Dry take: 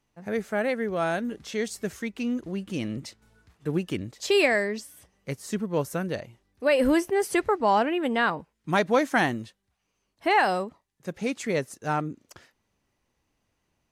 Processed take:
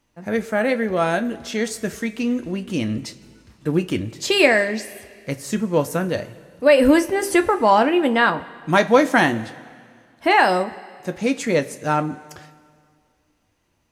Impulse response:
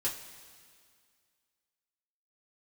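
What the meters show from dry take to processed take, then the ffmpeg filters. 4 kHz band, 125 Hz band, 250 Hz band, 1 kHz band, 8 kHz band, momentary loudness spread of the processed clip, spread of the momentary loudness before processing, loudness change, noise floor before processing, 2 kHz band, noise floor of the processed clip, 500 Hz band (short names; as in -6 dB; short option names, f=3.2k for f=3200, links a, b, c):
+7.5 dB, +6.0 dB, +7.5 dB, +6.5 dB, +7.0 dB, 15 LU, 15 LU, +7.0 dB, -77 dBFS, +7.0 dB, -67 dBFS, +6.5 dB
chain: -filter_complex "[0:a]asplit=2[a][b];[1:a]atrim=start_sample=2205[c];[b][c]afir=irnorm=-1:irlink=0,volume=-9dB[d];[a][d]amix=inputs=2:normalize=0,volume=4.5dB"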